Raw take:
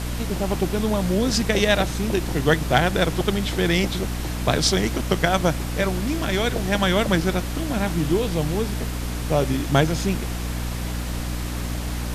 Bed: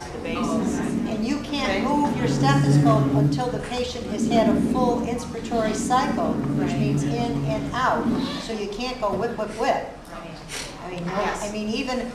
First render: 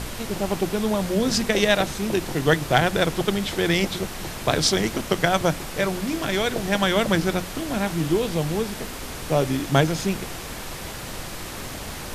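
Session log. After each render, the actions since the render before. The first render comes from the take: notches 60/120/180/240/300 Hz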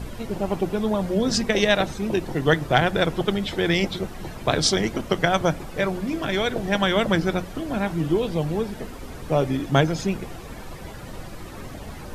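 denoiser 12 dB, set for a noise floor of -34 dBFS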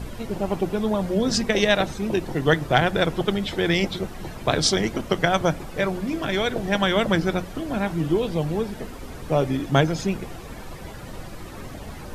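nothing audible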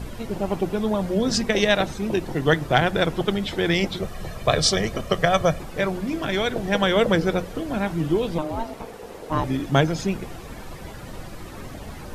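4.02–5.61 comb 1.7 ms, depth 54%; 6.74–7.63 bell 480 Hz +11.5 dB 0.24 oct; 8.38–9.44 ring modulator 460 Hz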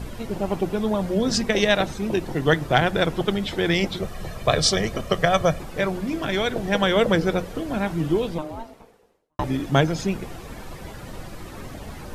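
8.19–9.39 fade out quadratic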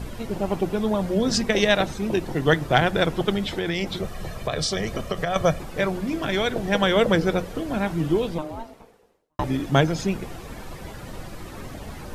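3.5–5.36 compressor, threshold -21 dBFS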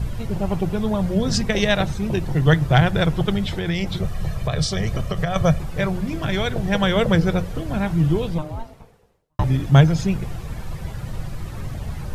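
resonant low shelf 190 Hz +9 dB, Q 1.5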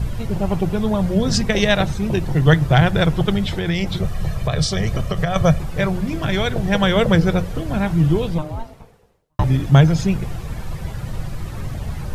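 gain +2.5 dB; limiter -2 dBFS, peak gain reduction 2.5 dB

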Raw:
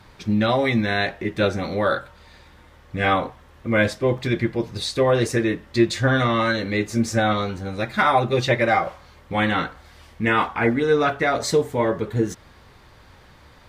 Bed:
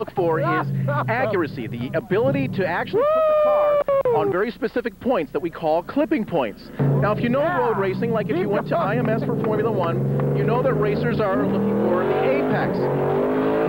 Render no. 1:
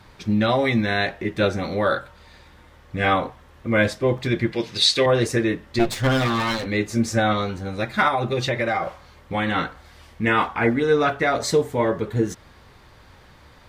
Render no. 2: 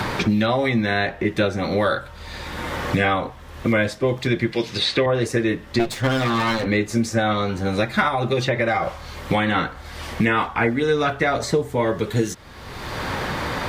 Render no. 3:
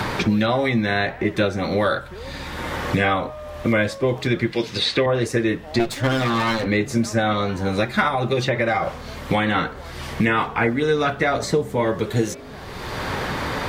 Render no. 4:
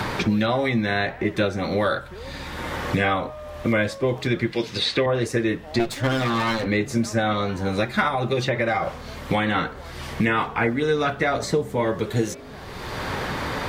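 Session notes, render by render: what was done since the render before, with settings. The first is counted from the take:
4.52–5.06 weighting filter D; 5.79–6.66 minimum comb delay 7.8 ms; 8.08–9.56 compressor, threshold -18 dBFS
three-band squash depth 100%
add bed -19 dB
gain -2 dB

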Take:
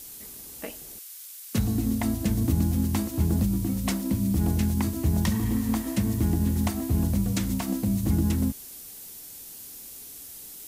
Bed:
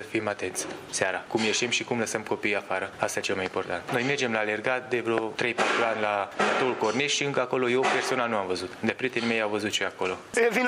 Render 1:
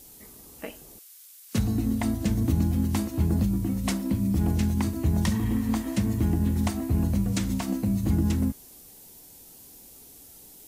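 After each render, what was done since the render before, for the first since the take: noise print and reduce 7 dB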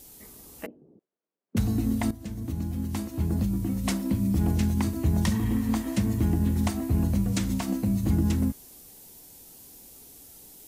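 0.66–1.57 Butterworth band-pass 250 Hz, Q 0.86; 2.11–3.94 fade in, from -13.5 dB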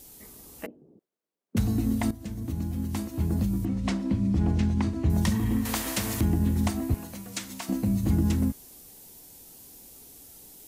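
3.65–5.1 air absorption 100 m; 5.65–6.21 spectral compressor 2:1; 6.94–7.69 HPF 1100 Hz 6 dB/oct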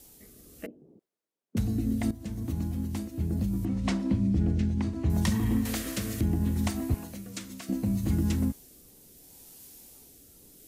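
rotary speaker horn 0.7 Hz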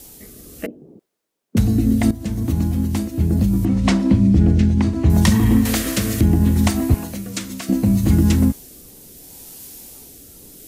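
gain +12 dB

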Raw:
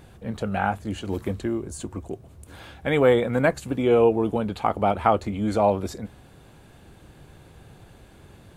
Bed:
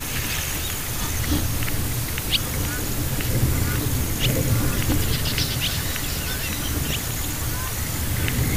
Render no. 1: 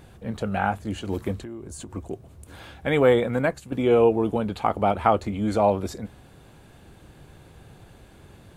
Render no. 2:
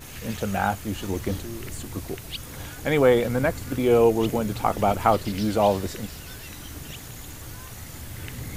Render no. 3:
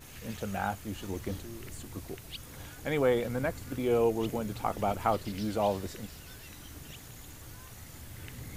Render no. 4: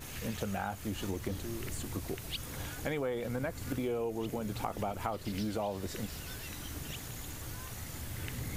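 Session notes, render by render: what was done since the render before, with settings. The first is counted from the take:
1.37–1.9 compressor 5:1, threshold -34 dBFS; 3.25–3.72 fade out, to -9.5 dB
add bed -13.5 dB
gain -8.5 dB
in parallel at -2.5 dB: limiter -23.5 dBFS, peak gain reduction 10 dB; on the sum: compressor 6:1, threshold -32 dBFS, peak gain reduction 12.5 dB

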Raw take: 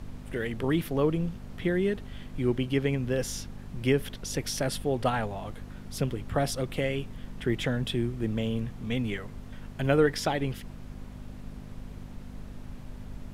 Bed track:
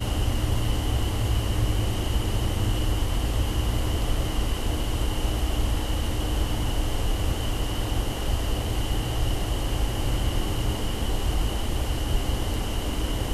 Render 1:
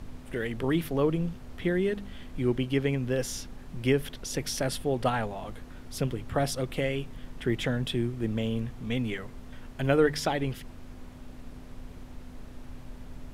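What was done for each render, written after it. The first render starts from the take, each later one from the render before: de-hum 50 Hz, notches 4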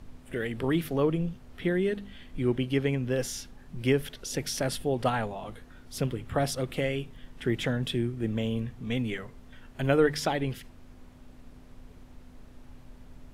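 noise print and reduce 6 dB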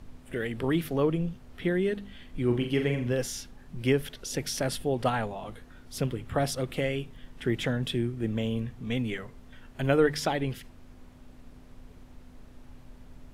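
2.46–3.13 flutter echo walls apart 7.1 m, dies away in 0.4 s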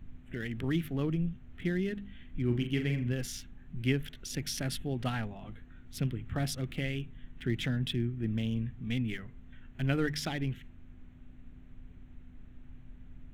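Wiener smoothing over 9 samples; ten-band EQ 500 Hz -12 dB, 1000 Hz -10 dB, 8000 Hz -4 dB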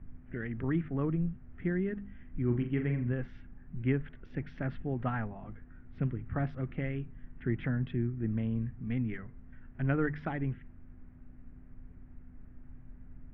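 LPF 1900 Hz 24 dB/oct; dynamic EQ 1100 Hz, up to +4 dB, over -53 dBFS, Q 2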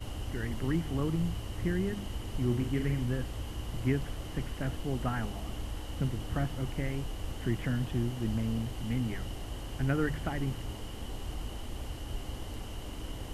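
add bed track -13.5 dB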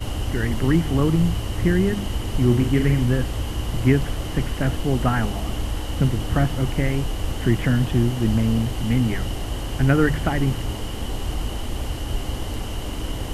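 gain +12 dB

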